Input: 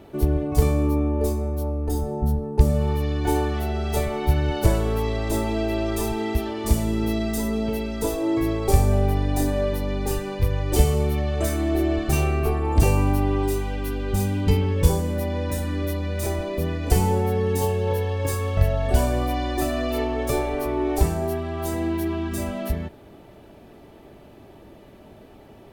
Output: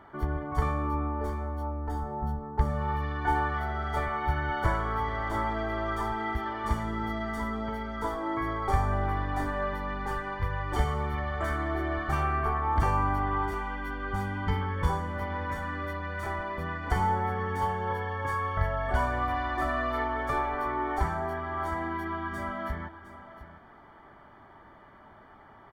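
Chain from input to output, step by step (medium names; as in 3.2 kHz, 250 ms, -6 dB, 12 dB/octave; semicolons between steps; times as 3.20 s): Savitzky-Golay filter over 41 samples; resonant low shelf 740 Hz -13.5 dB, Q 1.5; on a send: delay 709 ms -14.5 dB; on the sum: trim +4 dB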